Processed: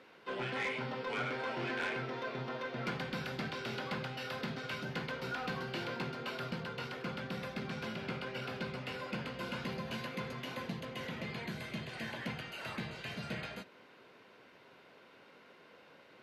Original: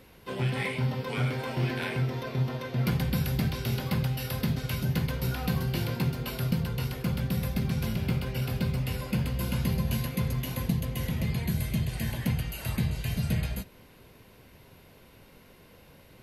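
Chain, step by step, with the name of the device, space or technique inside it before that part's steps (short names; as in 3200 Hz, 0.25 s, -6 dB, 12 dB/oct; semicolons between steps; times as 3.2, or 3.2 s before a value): intercom (BPF 310–4200 Hz; bell 1400 Hz +5.5 dB 0.47 oct; soft clip -27 dBFS, distortion -19 dB); gain -2 dB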